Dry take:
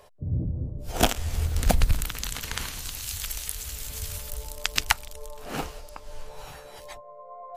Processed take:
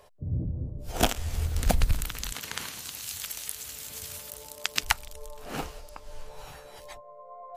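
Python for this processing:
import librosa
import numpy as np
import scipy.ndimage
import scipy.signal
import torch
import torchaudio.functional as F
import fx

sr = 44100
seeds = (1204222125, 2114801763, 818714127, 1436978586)

y = fx.highpass(x, sr, hz=150.0, slope=12, at=(2.32, 4.83))
y = F.gain(torch.from_numpy(y), -2.5).numpy()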